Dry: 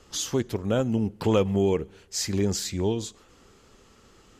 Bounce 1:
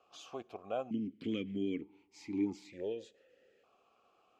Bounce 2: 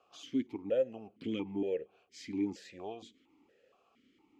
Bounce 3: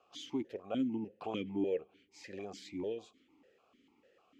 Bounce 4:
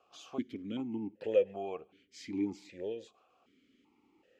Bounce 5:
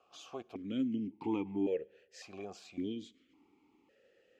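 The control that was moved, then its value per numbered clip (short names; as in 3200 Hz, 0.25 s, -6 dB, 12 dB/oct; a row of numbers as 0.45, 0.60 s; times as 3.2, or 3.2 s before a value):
vowel sequencer, rate: 1.1, 4.3, 6.7, 2.6, 1.8 Hz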